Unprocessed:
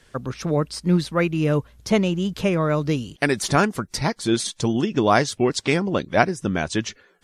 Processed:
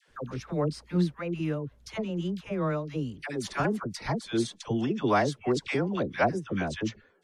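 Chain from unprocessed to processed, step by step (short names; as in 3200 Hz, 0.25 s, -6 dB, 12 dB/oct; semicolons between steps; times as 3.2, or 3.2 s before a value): high shelf 4900 Hz -10 dB; dispersion lows, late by 80 ms, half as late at 780 Hz; 1–3.65 tremolo 2.4 Hz, depth 61%; gain -6.5 dB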